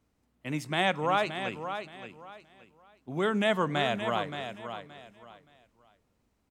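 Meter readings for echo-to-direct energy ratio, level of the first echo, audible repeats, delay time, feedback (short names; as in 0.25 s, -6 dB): -8.5 dB, -9.0 dB, 3, 0.573 s, 25%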